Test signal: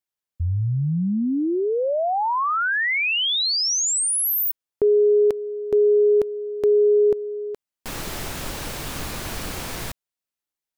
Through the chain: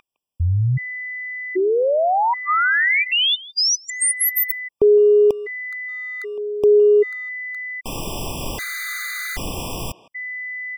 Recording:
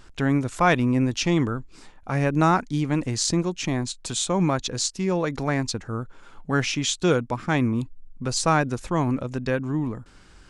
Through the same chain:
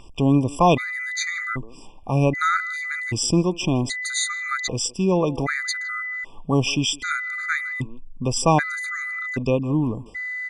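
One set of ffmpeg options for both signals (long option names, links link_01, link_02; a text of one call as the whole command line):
ffmpeg -i in.wav -filter_complex "[0:a]aeval=exprs='val(0)+0.0251*sin(2*PI*2000*n/s)':channel_layout=same,asplit=2[link_01][link_02];[link_02]adelay=160,highpass=300,lowpass=3400,asoftclip=type=hard:threshold=-15dB,volume=-17dB[link_03];[link_01][link_03]amix=inputs=2:normalize=0,afftfilt=real='re*gt(sin(2*PI*0.64*pts/sr)*(1-2*mod(floor(b*sr/1024/1200),2)),0)':imag='im*gt(sin(2*PI*0.64*pts/sr)*(1-2*mod(floor(b*sr/1024/1200),2)),0)':win_size=1024:overlap=0.75,volume=4.5dB" out.wav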